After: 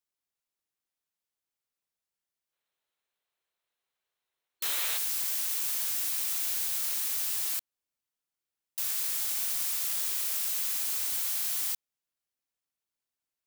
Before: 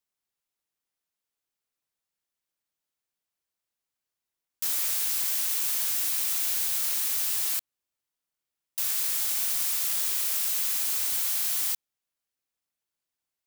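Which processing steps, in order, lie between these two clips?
time-frequency box 2.53–4.97 s, 360–4300 Hz +8 dB; trim -3.5 dB

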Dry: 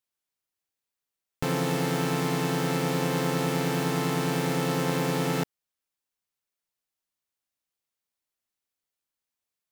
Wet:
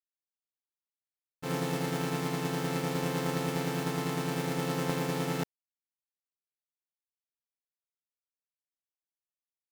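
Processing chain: expander -19 dBFS; trim +3 dB

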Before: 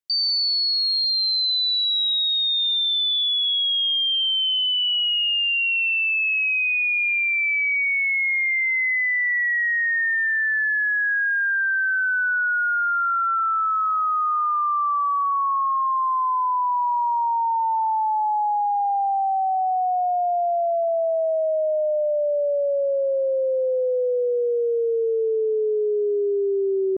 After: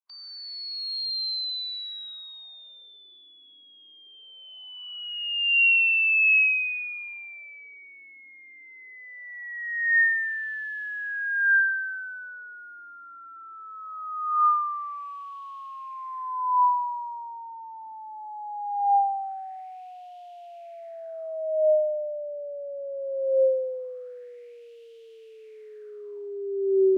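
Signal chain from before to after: spectral contrast reduction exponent 0.62; wah-wah 0.21 Hz 290–3000 Hz, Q 4.9; trim +3.5 dB

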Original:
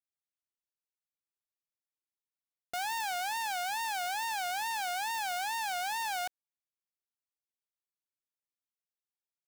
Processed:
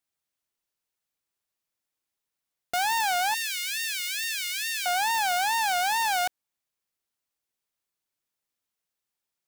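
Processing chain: 3.34–4.86 s: steep high-pass 1.8 kHz 48 dB/octave; trim +9 dB

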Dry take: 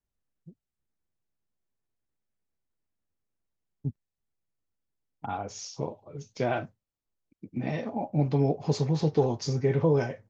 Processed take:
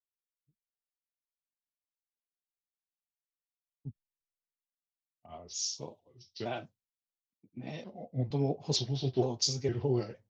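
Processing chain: pitch shift switched off and on -2.5 st, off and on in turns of 461 ms; resonant high shelf 2.5 kHz +9 dB, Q 1.5; three bands expanded up and down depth 70%; trim -8 dB

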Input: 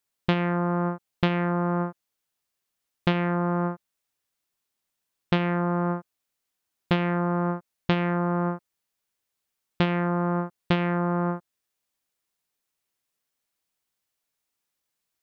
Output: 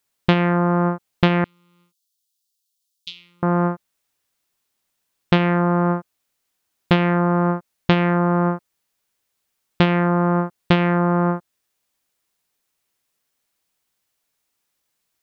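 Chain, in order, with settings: 1.44–3.43 s: inverse Chebyshev high-pass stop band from 1.8 kHz, stop band 40 dB; trim +7 dB

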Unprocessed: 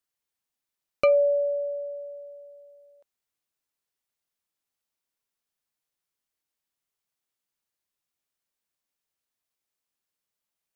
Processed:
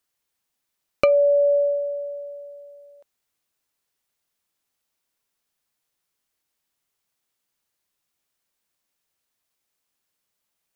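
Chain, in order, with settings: dynamic bell 580 Hz, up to +4 dB, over -30 dBFS; compression 6:1, threshold -23 dBFS, peak gain reduction 10 dB; trim +7.5 dB

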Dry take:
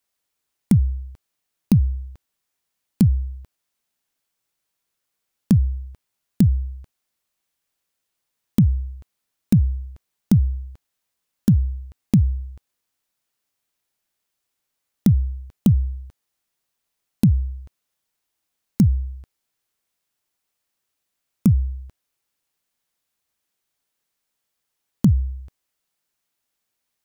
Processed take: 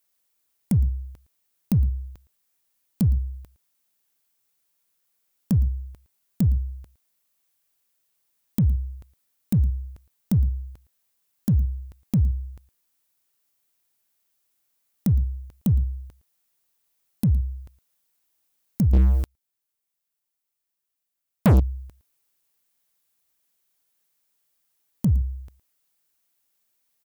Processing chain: in parallel at -10 dB: hard clipper -14 dBFS, distortion -12 dB; on the sum: peak limiter -11.5 dBFS, peak gain reduction 7 dB; treble shelf 9.3 kHz +10.5 dB; delay 113 ms -20 dB; 18.93–21.60 s: waveshaping leveller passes 5; trim -3 dB

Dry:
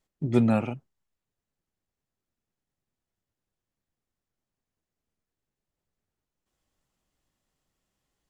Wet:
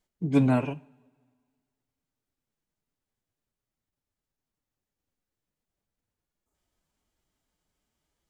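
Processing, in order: two-slope reverb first 0.49 s, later 1.9 s, from -18 dB, DRR 15.5 dB; formant-preserving pitch shift +2.5 st; spectral replace 6.27–6.52 s, 1.4–6.1 kHz before

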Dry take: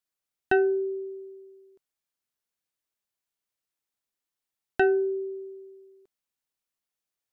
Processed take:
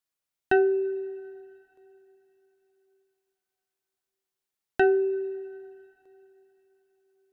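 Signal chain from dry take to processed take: two-slope reverb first 0.31 s, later 4 s, from -18 dB, DRR 13.5 dB

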